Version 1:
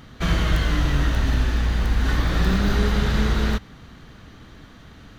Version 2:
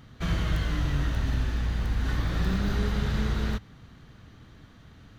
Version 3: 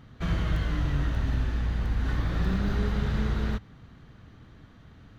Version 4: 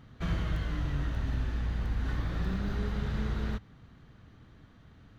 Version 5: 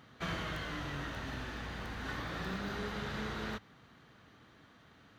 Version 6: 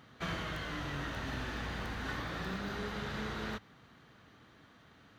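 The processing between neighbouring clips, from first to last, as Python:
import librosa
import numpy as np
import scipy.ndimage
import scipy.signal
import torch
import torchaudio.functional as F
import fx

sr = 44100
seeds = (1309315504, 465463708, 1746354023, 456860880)

y1 = fx.peak_eq(x, sr, hz=110.0, db=6.0, octaves=1.2)
y1 = F.gain(torch.from_numpy(y1), -8.5).numpy()
y2 = fx.high_shelf(y1, sr, hz=3500.0, db=-8.0)
y3 = fx.rider(y2, sr, range_db=10, speed_s=0.5)
y3 = F.gain(torch.from_numpy(y3), -4.5).numpy()
y4 = fx.highpass(y3, sr, hz=530.0, slope=6)
y4 = F.gain(torch.from_numpy(y4), 3.5).numpy()
y5 = fx.rider(y4, sr, range_db=10, speed_s=0.5)
y5 = F.gain(torch.from_numpy(y5), 1.0).numpy()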